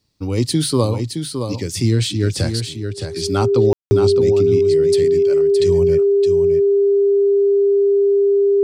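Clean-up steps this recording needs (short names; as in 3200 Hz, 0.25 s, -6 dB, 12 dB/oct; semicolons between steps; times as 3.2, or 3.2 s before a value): notch 400 Hz, Q 30; room tone fill 3.73–3.91; inverse comb 0.617 s -7 dB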